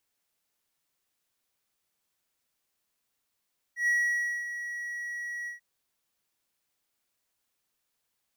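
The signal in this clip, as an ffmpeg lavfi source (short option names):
-f lavfi -i "aevalsrc='0.1*(1-4*abs(mod(1920*t+0.25,1)-0.5))':d=1.838:s=44100,afade=t=in:d=0.114,afade=t=out:st=0.114:d=0.571:silence=0.266,afade=t=out:st=1.71:d=0.128"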